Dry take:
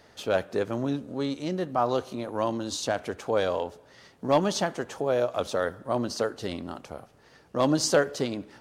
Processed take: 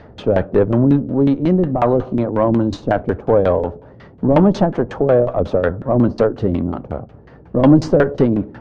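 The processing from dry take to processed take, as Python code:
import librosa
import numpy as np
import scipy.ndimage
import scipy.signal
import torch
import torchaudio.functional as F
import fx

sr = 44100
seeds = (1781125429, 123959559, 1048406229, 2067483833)

y = fx.cheby_harmonics(x, sr, harmonics=(5, 8), levels_db=(-18, -29), full_scale_db=-11.0)
y = fx.filter_lfo_lowpass(y, sr, shape='saw_down', hz=5.5, low_hz=320.0, high_hz=2600.0, q=0.74)
y = fx.low_shelf(y, sr, hz=230.0, db=11.0)
y = y * 10.0 ** (8.0 / 20.0)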